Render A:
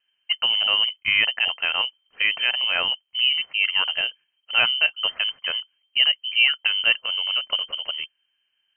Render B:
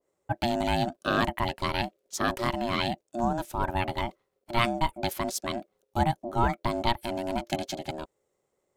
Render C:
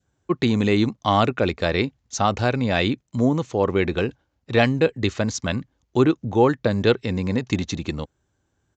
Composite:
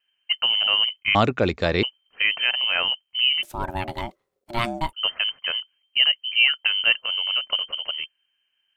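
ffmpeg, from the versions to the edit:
ffmpeg -i take0.wav -i take1.wav -i take2.wav -filter_complex "[0:a]asplit=3[link_01][link_02][link_03];[link_01]atrim=end=1.152[link_04];[2:a]atrim=start=1.148:end=1.832[link_05];[link_02]atrim=start=1.828:end=3.432[link_06];[1:a]atrim=start=3.428:end=4.932[link_07];[link_03]atrim=start=4.928[link_08];[link_04][link_05]acrossfade=duration=0.004:curve1=hsin:curve2=hsin[link_09];[link_09][link_06]acrossfade=duration=0.004:curve1=hsin:curve2=hsin[link_10];[link_10][link_07]acrossfade=duration=0.004:curve1=hsin:curve2=hsin[link_11];[link_11][link_08]acrossfade=duration=0.004:curve1=hsin:curve2=hsin" out.wav

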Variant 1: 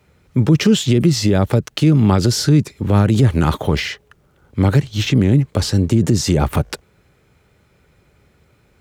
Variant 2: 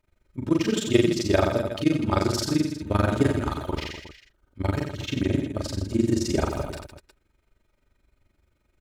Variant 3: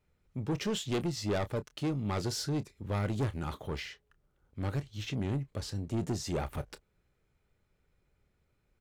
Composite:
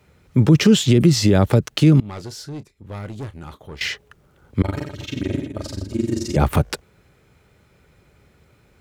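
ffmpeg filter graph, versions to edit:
ffmpeg -i take0.wav -i take1.wav -i take2.wav -filter_complex "[0:a]asplit=3[link_01][link_02][link_03];[link_01]atrim=end=2.002[link_04];[2:a]atrim=start=1.998:end=3.812[link_05];[link_02]atrim=start=3.808:end=4.622[link_06];[1:a]atrim=start=4.618:end=6.362[link_07];[link_03]atrim=start=6.358[link_08];[link_04][link_05]acrossfade=duration=0.004:curve1=hsin:curve2=hsin[link_09];[link_09][link_06]acrossfade=duration=0.004:curve1=hsin:curve2=hsin[link_10];[link_10][link_07]acrossfade=duration=0.004:curve1=hsin:curve2=hsin[link_11];[link_11][link_08]acrossfade=duration=0.004:curve1=hsin:curve2=hsin" out.wav

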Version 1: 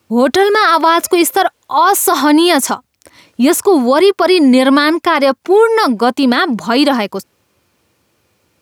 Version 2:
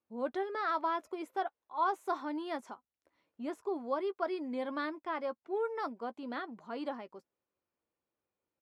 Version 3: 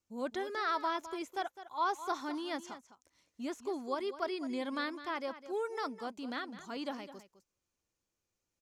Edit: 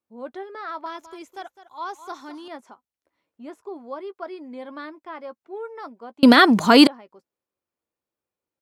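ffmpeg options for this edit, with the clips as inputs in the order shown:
ffmpeg -i take0.wav -i take1.wav -i take2.wav -filter_complex "[1:a]asplit=3[link_01][link_02][link_03];[link_01]atrim=end=0.862[link_04];[2:a]atrim=start=0.858:end=2.482[link_05];[link_02]atrim=start=2.478:end=6.232[link_06];[0:a]atrim=start=6.228:end=6.872[link_07];[link_03]atrim=start=6.868[link_08];[link_04][link_05]acrossfade=duration=0.004:curve1=hsin:curve2=hsin[link_09];[link_09][link_06]acrossfade=duration=0.004:curve1=hsin:curve2=hsin[link_10];[link_10][link_07]acrossfade=duration=0.004:curve1=hsin:curve2=hsin[link_11];[link_11][link_08]acrossfade=duration=0.004:curve1=hsin:curve2=hsin" out.wav

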